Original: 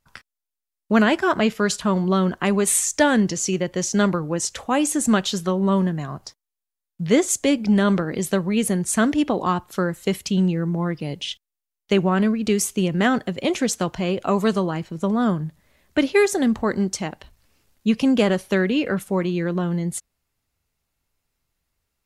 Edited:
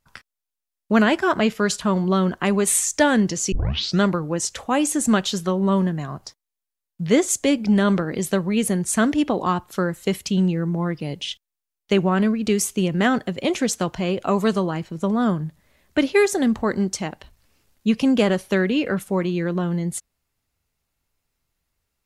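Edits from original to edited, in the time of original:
3.52 s: tape start 0.50 s

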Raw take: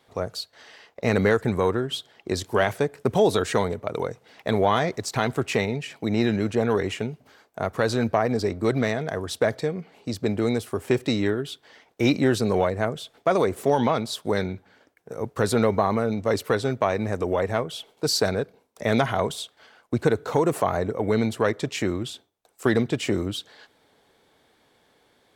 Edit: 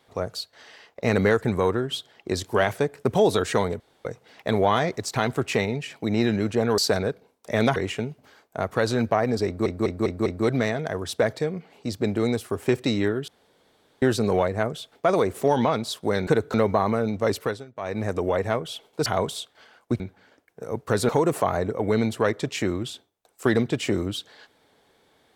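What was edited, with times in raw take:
3.80–4.05 s: room tone
8.48 s: stutter 0.20 s, 5 plays
11.50–12.24 s: room tone
14.49–15.58 s: swap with 20.02–20.29 s
16.41–17.07 s: dip -20.5 dB, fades 0.28 s
18.10–19.08 s: move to 6.78 s

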